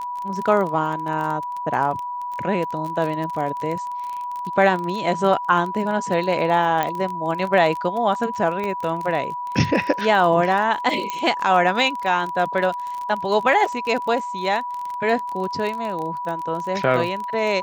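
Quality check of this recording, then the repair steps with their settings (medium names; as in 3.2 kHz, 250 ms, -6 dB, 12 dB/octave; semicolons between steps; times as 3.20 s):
crackle 27 per s -26 dBFS
whine 980 Hz -26 dBFS
6.83 s: pop -9 dBFS
8.64 s: pop -16 dBFS
11.10 s: pop -11 dBFS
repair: de-click; band-stop 980 Hz, Q 30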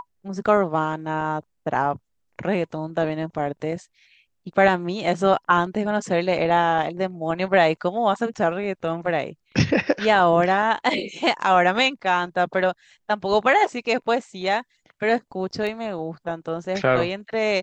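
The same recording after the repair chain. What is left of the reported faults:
nothing left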